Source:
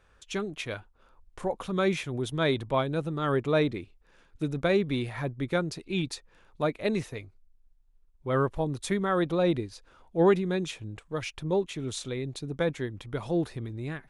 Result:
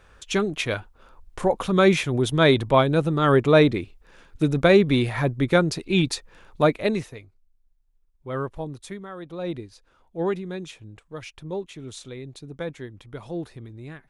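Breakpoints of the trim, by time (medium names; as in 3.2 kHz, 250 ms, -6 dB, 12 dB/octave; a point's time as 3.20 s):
6.71 s +9 dB
7.20 s -3 dB
8.67 s -3 dB
9.18 s -12.5 dB
9.51 s -4 dB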